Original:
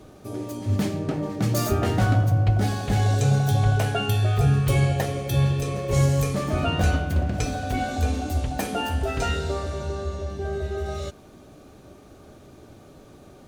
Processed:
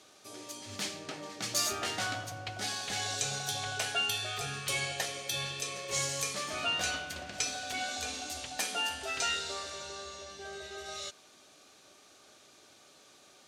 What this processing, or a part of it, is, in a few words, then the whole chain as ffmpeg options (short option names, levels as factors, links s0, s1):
piezo pickup straight into a mixer: -af "lowpass=5700,aderivative,volume=2.82"